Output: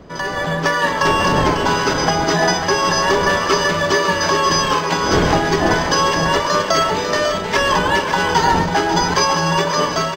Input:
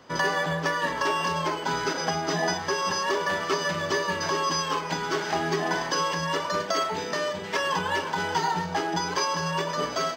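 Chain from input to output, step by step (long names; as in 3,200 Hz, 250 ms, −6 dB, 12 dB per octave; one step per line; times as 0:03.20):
wind on the microphone 500 Hz −36 dBFS
automatic gain control gain up to 11 dB
single-tap delay 546 ms −8.5 dB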